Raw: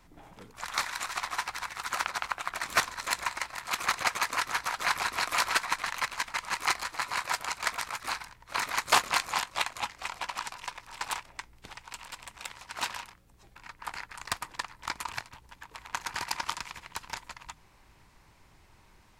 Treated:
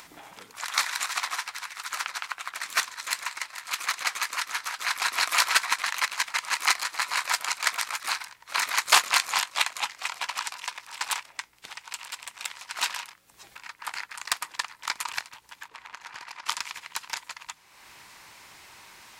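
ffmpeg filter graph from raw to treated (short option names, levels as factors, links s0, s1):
-filter_complex "[0:a]asettb=1/sr,asplit=3[s0][s1][s2];[s0]atrim=end=1.384[s3];[s1]atrim=start=1.38:end=5.02,asetpts=PTS-STARTPTS,afade=t=in:d=0.004:c=qsin,afade=t=out:st=3.636:d=0.004:c=qsin,equalizer=f=690:w=1.5:g=-3,flanger=delay=0.7:depth=8.1:regen=-74:speed=2:shape=triangular[s4];[s2]atrim=start=5.016[s5];[s3][s4]acrossfade=d=0.004:c1=hsin:c2=qsin[s6];[s6][s5]acrossfade=d=0.004:c1=qsin:c2=hsin,asettb=1/sr,asplit=3[s7][s8][s9];[s7]atrim=end=15.684[s10];[s8]atrim=start=15.68:end=16.46,asetpts=PTS-STARTPTS,afade=t=in:d=0.004:c=qsin,afade=t=out:st=0.776:d=0.004:c=qsin,lowpass=f=2400:p=1,acompressor=threshold=0.01:ratio=12:attack=3.2:release=140:knee=1:detection=peak[s11];[s9]atrim=start=16.456[s12];[s10][s11]acrossfade=d=0.004:c1=hsin:c2=qsin[s13];[s13][s12]acrossfade=d=0.004:c1=qsin:c2=hsin,highpass=f=280:p=1,tiltshelf=f=920:g=-6,acompressor=mode=upward:threshold=0.00891:ratio=2.5,volume=1.19"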